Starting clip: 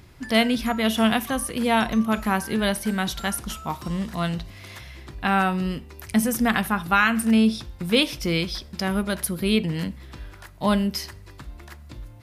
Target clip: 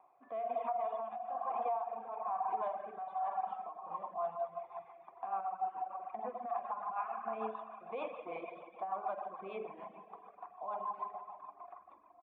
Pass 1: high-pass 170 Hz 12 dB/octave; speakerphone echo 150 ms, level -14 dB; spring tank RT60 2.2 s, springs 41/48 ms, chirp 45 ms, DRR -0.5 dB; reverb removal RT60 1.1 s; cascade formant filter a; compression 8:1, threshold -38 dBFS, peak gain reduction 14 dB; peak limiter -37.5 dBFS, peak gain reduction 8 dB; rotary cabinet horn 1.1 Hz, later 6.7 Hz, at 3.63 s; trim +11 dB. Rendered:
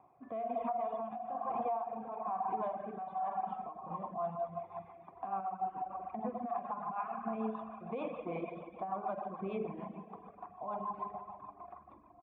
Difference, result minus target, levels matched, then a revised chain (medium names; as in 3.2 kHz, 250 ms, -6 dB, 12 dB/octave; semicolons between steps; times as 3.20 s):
125 Hz band +15.5 dB
high-pass 560 Hz 12 dB/octave; speakerphone echo 150 ms, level -14 dB; spring tank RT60 2.2 s, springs 41/48 ms, chirp 45 ms, DRR -0.5 dB; reverb removal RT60 1.1 s; cascade formant filter a; compression 8:1, threshold -38 dBFS, peak gain reduction 13 dB; peak limiter -37.5 dBFS, peak gain reduction 8 dB; rotary cabinet horn 1.1 Hz, later 6.7 Hz, at 3.63 s; trim +11 dB